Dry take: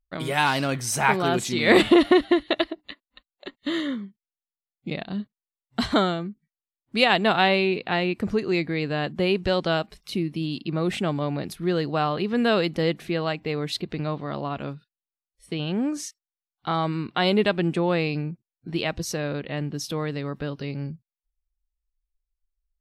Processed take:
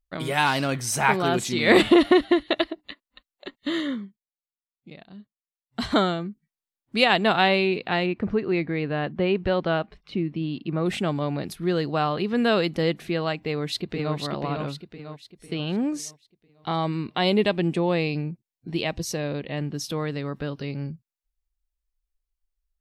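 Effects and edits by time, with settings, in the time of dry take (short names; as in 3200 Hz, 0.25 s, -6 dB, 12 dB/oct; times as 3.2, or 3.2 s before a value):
3.99–5.93 dip -14 dB, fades 0.28 s
8.06–10.86 LPF 2500 Hz
13.44–14.16 echo throw 0.5 s, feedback 45%, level -4.5 dB
15.81–19.58 bell 1400 Hz -7 dB 0.41 oct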